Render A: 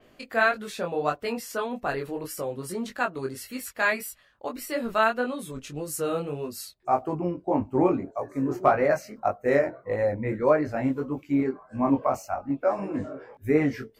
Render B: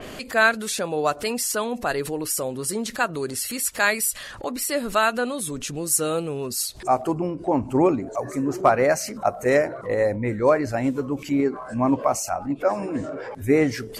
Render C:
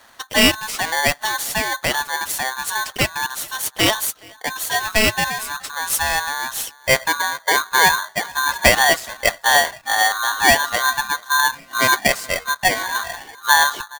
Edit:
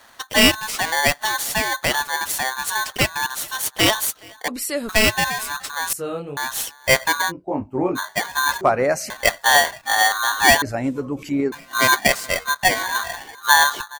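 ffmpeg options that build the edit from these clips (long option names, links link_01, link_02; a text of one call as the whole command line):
ffmpeg -i take0.wav -i take1.wav -i take2.wav -filter_complex "[1:a]asplit=3[link_01][link_02][link_03];[0:a]asplit=2[link_04][link_05];[2:a]asplit=6[link_06][link_07][link_08][link_09][link_10][link_11];[link_06]atrim=end=4.482[link_12];[link_01]atrim=start=4.478:end=4.892[link_13];[link_07]atrim=start=4.888:end=5.932[link_14];[link_04]atrim=start=5.928:end=6.372[link_15];[link_08]atrim=start=6.368:end=7.32[link_16];[link_05]atrim=start=7.28:end=7.99[link_17];[link_09]atrim=start=7.95:end=8.612[link_18];[link_02]atrim=start=8.608:end=9.102[link_19];[link_10]atrim=start=9.098:end=10.622[link_20];[link_03]atrim=start=10.618:end=11.522[link_21];[link_11]atrim=start=11.518[link_22];[link_12][link_13]acrossfade=duration=0.004:curve1=hsin:curve2=hsin[link_23];[link_23][link_14]acrossfade=duration=0.004:curve1=hsin:curve2=hsin[link_24];[link_24][link_15]acrossfade=duration=0.004:curve1=hsin:curve2=hsin[link_25];[link_25][link_16]acrossfade=duration=0.004:curve1=hsin:curve2=hsin[link_26];[link_26][link_17]acrossfade=duration=0.04:curve1=tri:curve2=tri[link_27];[link_27][link_18]acrossfade=duration=0.04:curve1=tri:curve2=tri[link_28];[link_28][link_19]acrossfade=duration=0.004:curve1=hsin:curve2=hsin[link_29];[link_29][link_20]acrossfade=duration=0.004:curve1=hsin:curve2=hsin[link_30];[link_30][link_21]acrossfade=duration=0.004:curve1=hsin:curve2=hsin[link_31];[link_31][link_22]acrossfade=duration=0.004:curve1=hsin:curve2=hsin" out.wav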